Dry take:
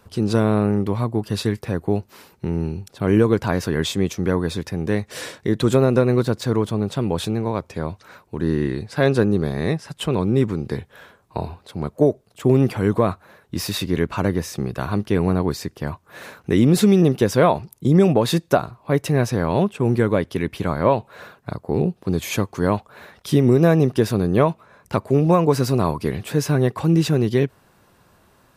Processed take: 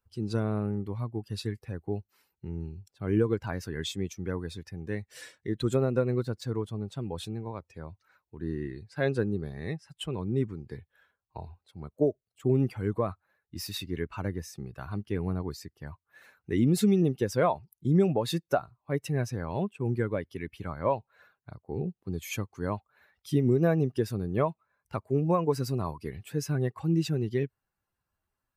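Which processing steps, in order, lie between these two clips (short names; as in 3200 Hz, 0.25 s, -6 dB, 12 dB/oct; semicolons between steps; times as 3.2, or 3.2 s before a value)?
per-bin expansion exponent 1.5; gain -7 dB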